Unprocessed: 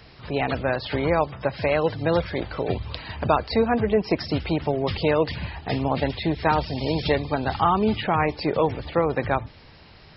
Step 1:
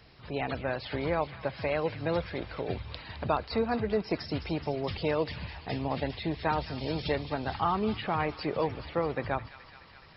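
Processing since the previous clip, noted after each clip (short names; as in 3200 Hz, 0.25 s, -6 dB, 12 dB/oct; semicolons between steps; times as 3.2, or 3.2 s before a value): thin delay 0.212 s, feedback 76%, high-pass 1700 Hz, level -11 dB; gain -8 dB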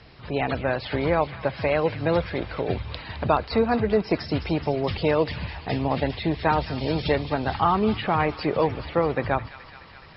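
air absorption 76 m; gain +7.5 dB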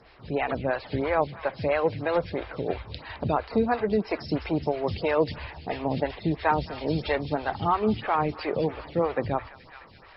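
photocell phaser 3 Hz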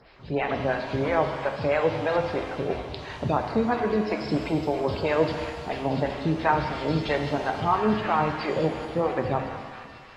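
shimmer reverb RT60 1.6 s, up +7 st, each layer -8 dB, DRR 4.5 dB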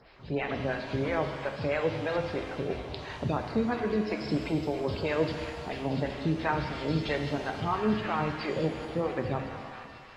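dynamic EQ 830 Hz, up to -6 dB, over -36 dBFS, Q 0.98; gain -2.5 dB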